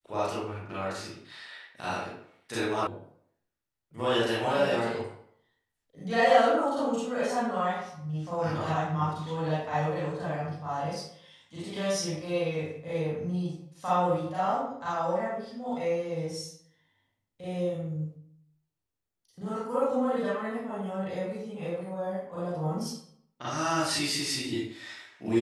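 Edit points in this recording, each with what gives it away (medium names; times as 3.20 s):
2.87 s: sound stops dead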